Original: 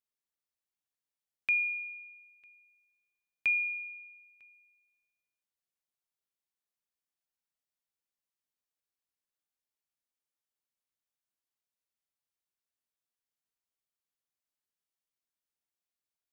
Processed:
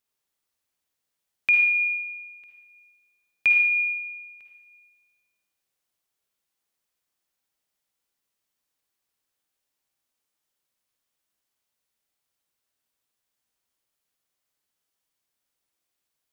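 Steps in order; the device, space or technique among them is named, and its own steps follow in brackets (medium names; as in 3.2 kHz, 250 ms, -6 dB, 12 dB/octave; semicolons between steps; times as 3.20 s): bathroom (reverberation RT60 0.80 s, pre-delay 46 ms, DRR 2 dB); trim +8.5 dB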